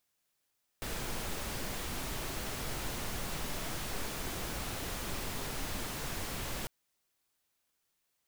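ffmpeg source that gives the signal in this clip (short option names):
-f lavfi -i "anoisesrc=c=pink:a=0.0684:d=5.85:r=44100:seed=1"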